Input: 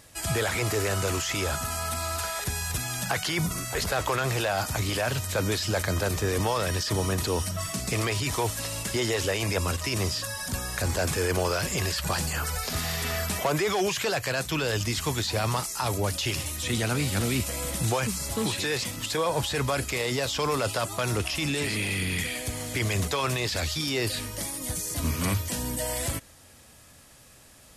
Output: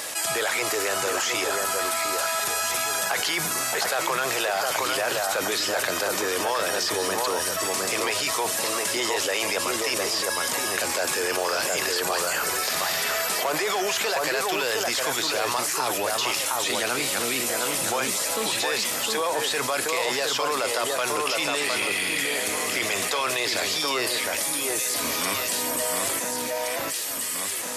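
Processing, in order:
high-pass filter 470 Hz 12 dB per octave
on a send: delay that swaps between a low-pass and a high-pass 711 ms, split 1,800 Hz, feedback 51%, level −3 dB
on the sum: envelope flattener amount 70%

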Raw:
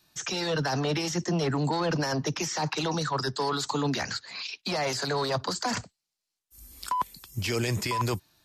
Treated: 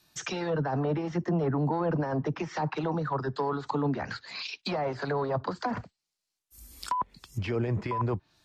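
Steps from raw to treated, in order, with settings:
treble cut that deepens with the level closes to 1,100 Hz, closed at −25 dBFS

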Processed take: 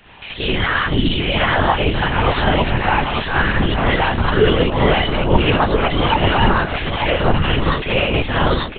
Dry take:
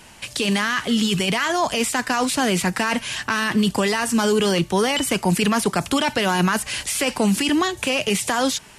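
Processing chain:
on a send: single-tap delay 893 ms −5.5 dB
on the sum: reverb whose tail is shaped and stops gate 100 ms rising, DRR −6.5 dB
linear-prediction vocoder at 8 kHz whisper
level −2.5 dB

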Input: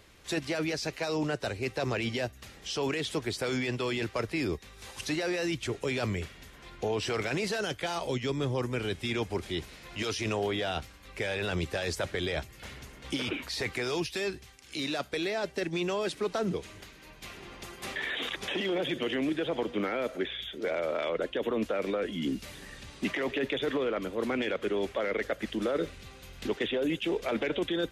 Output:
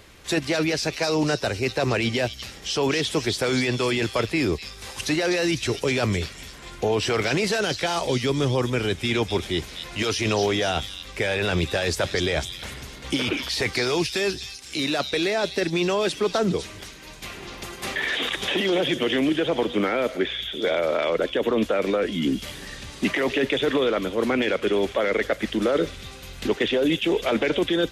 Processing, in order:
echo through a band-pass that steps 250 ms, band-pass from 4,500 Hz, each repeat 0.7 octaves, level −3 dB
level +8 dB

